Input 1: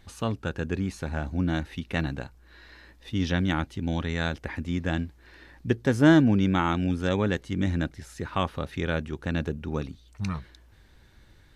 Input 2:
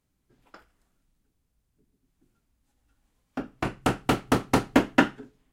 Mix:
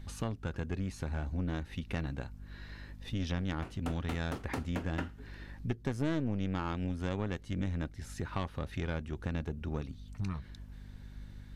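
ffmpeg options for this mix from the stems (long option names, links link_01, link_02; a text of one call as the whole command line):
ffmpeg -i stem1.wav -i stem2.wav -filter_complex "[0:a]lowshelf=frequency=75:gain=8.5,aeval=exprs='(tanh(5.01*val(0)+0.75)-tanh(0.75))/5.01':channel_layout=same,volume=2.5dB[link_01];[1:a]volume=-11dB[link_02];[link_01][link_02]amix=inputs=2:normalize=0,aeval=exprs='val(0)+0.00447*(sin(2*PI*50*n/s)+sin(2*PI*2*50*n/s)/2+sin(2*PI*3*50*n/s)/3+sin(2*PI*4*50*n/s)/4+sin(2*PI*5*50*n/s)/5)':channel_layout=same,acompressor=threshold=-35dB:ratio=2.5" out.wav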